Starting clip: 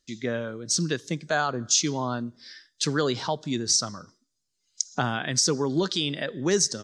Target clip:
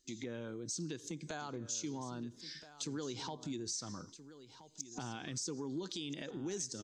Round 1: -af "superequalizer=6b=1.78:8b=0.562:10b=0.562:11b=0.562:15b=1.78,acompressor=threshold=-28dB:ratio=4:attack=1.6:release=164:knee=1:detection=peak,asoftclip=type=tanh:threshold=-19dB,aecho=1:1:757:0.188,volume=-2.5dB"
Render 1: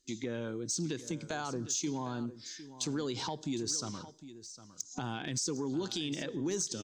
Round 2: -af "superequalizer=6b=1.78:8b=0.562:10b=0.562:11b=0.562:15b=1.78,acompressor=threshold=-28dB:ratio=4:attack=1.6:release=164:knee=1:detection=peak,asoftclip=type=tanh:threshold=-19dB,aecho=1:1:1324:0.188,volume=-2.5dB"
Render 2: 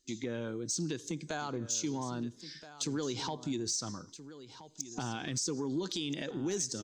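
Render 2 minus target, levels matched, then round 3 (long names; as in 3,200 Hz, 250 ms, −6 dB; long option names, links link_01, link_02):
downward compressor: peak gain reduction −6.5 dB
-af "superequalizer=6b=1.78:8b=0.562:10b=0.562:11b=0.562:15b=1.78,acompressor=threshold=-36.5dB:ratio=4:attack=1.6:release=164:knee=1:detection=peak,asoftclip=type=tanh:threshold=-19dB,aecho=1:1:1324:0.188,volume=-2.5dB"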